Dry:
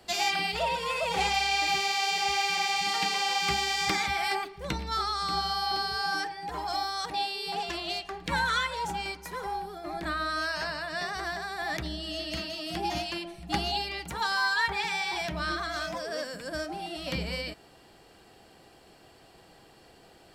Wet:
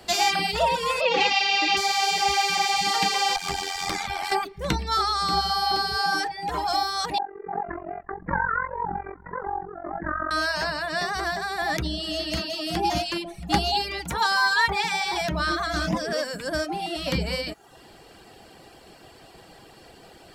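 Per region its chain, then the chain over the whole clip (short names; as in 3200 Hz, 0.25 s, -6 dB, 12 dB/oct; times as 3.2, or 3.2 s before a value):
1.01–1.77 speaker cabinet 230–5400 Hz, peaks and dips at 310 Hz +5 dB, 490 Hz +7 dB, 710 Hz -10 dB, 1400 Hz -3 dB, 2700 Hz +8 dB + comb 3.6 ms, depth 40%
3.36–4.32 notches 50/100/150/200/250/300/350 Hz + tube stage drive 22 dB, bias 0.6 + AM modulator 88 Hz, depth 50%
7.18–10.31 steep low-pass 1900 Hz 72 dB/oct + AM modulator 45 Hz, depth 70%
15.73–16.13 resonant low shelf 340 Hz +9.5 dB, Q 1.5 + Doppler distortion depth 0.17 ms
whole clip: reverb removal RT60 0.52 s; dynamic EQ 2500 Hz, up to -4 dB, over -41 dBFS, Q 1.2; gain +8 dB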